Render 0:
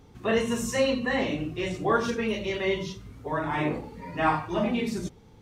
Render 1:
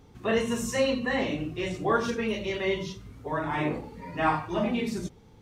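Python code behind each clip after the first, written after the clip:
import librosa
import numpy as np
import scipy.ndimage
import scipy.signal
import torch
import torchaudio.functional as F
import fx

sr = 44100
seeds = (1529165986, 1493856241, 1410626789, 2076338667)

y = fx.end_taper(x, sr, db_per_s=550.0)
y = F.gain(torch.from_numpy(y), -1.0).numpy()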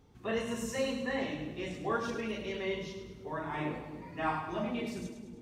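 y = fx.echo_split(x, sr, split_hz=460.0, low_ms=277, high_ms=104, feedback_pct=52, wet_db=-8.5)
y = F.gain(torch.from_numpy(y), -8.0).numpy()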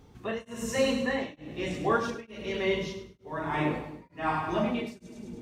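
y = x * np.abs(np.cos(np.pi * 1.1 * np.arange(len(x)) / sr))
y = F.gain(torch.from_numpy(y), 7.5).numpy()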